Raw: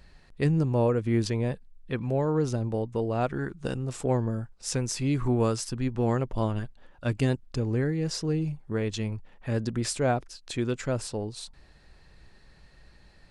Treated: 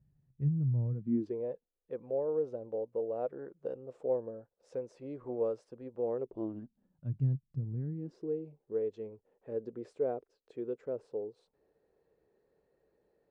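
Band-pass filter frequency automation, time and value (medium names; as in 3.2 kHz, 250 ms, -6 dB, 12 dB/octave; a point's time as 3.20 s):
band-pass filter, Q 4.9
0.92 s 130 Hz
1.41 s 510 Hz
6.10 s 510 Hz
7.10 s 140 Hz
7.73 s 140 Hz
8.34 s 450 Hz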